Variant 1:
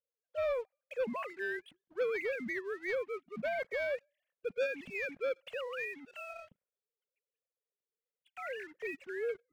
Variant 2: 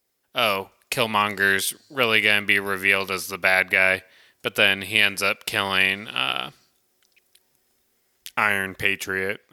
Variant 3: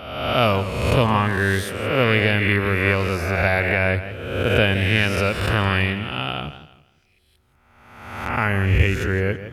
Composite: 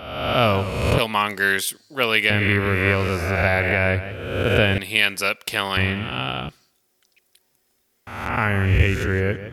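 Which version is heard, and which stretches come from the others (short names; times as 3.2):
3
0.98–2.3 from 2
4.78–5.77 from 2
6.49–8.07 from 2
not used: 1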